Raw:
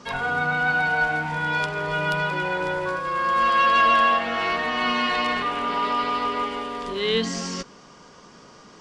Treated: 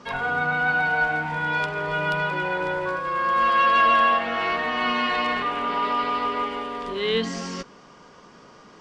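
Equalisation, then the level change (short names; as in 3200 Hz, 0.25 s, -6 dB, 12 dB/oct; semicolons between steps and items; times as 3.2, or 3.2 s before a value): tone controls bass -2 dB, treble -7 dB; 0.0 dB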